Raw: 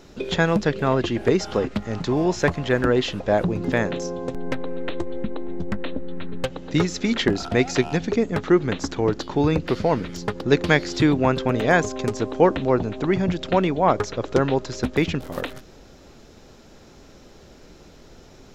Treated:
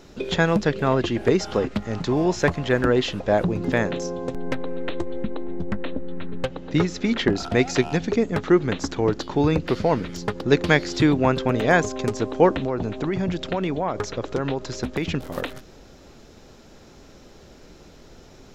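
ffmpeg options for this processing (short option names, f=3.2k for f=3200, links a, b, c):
-filter_complex "[0:a]asettb=1/sr,asplit=3[a][b][c];[a]atrim=end=5.444[d];[b]atrim=start=5.44:end=7.36,asetpts=PTS-STARTPTS,afade=t=in:d=0.004:c=qsin,afade=t=out:st=1.916:d=0.004:c=qsin,lowpass=f=3.7k:p=1[e];[c]atrim=start=7.356[f];[d][e]acrossfade=d=0.004:c1=hsin:c2=qsin[g];[g][f]acrossfade=d=0.004:c1=qsin:c2=hsin,asettb=1/sr,asplit=3[h][i][j];[h]atrim=end=12.654[k];[i]atrim=start=12.65:end=15.13,asetpts=PTS-STARTPTS,afade=t=in:d=0.004:c=qsin,afade=t=out:st=2.476:d=0.004:c=qsin,acompressor=threshold=-20dB:ratio=6:attack=3.2:release=140:knee=1:detection=peak[l];[j]atrim=start=15.126[m];[k][l]acrossfade=d=0.004:c1=hsin:c2=qsin[n];[n][m]acrossfade=d=0.004:c1=qsin:c2=hsin"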